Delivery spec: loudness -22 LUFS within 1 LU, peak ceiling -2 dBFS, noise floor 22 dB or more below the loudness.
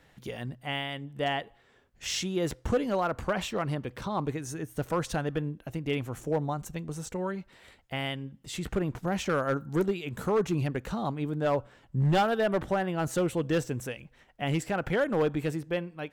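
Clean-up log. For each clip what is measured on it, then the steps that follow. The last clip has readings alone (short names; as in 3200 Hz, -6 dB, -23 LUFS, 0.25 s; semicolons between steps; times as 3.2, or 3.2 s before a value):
clipped 1.1%; flat tops at -20.0 dBFS; loudness -31.0 LUFS; peak -20.0 dBFS; loudness target -22.0 LUFS
-> clip repair -20 dBFS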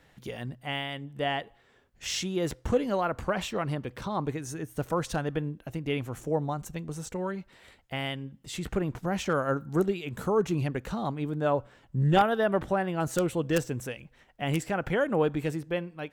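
clipped 0.0%; loudness -30.5 LUFS; peak -11.0 dBFS; loudness target -22.0 LUFS
-> gain +8.5 dB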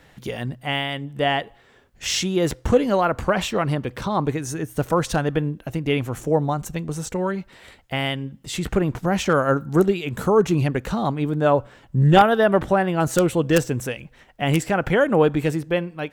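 loudness -22.0 LUFS; peak -2.5 dBFS; noise floor -54 dBFS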